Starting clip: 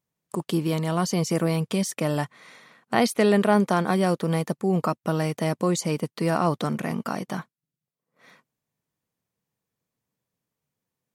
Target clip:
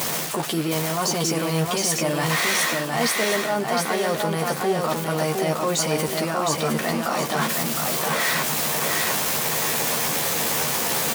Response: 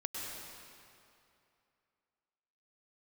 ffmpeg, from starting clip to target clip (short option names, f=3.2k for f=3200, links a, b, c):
-filter_complex "[0:a]aeval=exprs='val(0)+0.5*0.0355*sgn(val(0))':c=same,highpass=f=520:p=1,equalizer=f=710:w=2.1:g=2.5,areverse,acompressor=threshold=-34dB:ratio=6,areverse,asplit=2[a][b];[b]adelay=13,volume=-5dB[c];[a][c]amix=inputs=2:normalize=0,asplit=2[d][e];[e]alimiter=level_in=6.5dB:limit=-24dB:level=0:latency=1,volume=-6.5dB,volume=-1.5dB[f];[d][f]amix=inputs=2:normalize=0,aecho=1:1:712|1424|2136|2848|3560:0.668|0.234|0.0819|0.0287|0.01,volume=8dB"